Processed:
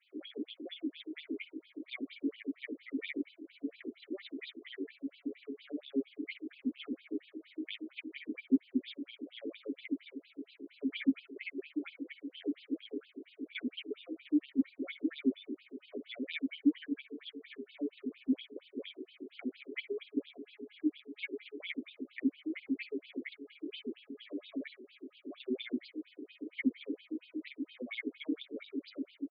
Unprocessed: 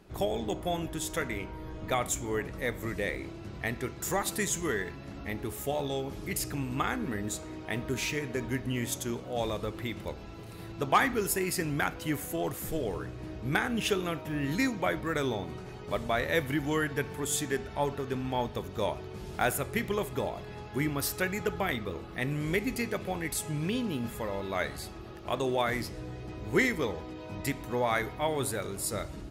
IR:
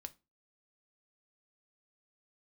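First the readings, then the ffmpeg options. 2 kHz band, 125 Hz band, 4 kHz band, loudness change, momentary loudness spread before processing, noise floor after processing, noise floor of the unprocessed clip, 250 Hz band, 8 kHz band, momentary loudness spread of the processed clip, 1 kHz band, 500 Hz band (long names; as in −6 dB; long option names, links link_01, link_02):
−12.5 dB, below −30 dB, −8.0 dB, −7.5 dB, 10 LU, −71 dBFS, −44 dBFS, −1.5 dB, below −40 dB, 13 LU, below −30 dB, −13.0 dB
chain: -filter_complex "[0:a]equalizer=frequency=1500:width=0.96:gain=-10,aecho=1:1:7.3:0.62,acompressor=threshold=-30dB:ratio=6,asoftclip=type=hard:threshold=-29dB,asplit=3[link_01][link_02][link_03];[link_01]bandpass=frequency=270:width_type=q:width=8,volume=0dB[link_04];[link_02]bandpass=frequency=2290:width_type=q:width=8,volume=-6dB[link_05];[link_03]bandpass=frequency=3010:width_type=q:width=8,volume=-9dB[link_06];[link_04][link_05][link_06]amix=inputs=3:normalize=0,afftfilt=real='re*between(b*sr/1024,330*pow(3600/330,0.5+0.5*sin(2*PI*4.3*pts/sr))/1.41,330*pow(3600/330,0.5+0.5*sin(2*PI*4.3*pts/sr))*1.41)':imag='im*between(b*sr/1024,330*pow(3600/330,0.5+0.5*sin(2*PI*4.3*pts/sr))/1.41,330*pow(3600/330,0.5+0.5*sin(2*PI*4.3*pts/sr))*1.41)':win_size=1024:overlap=0.75,volume=16dB"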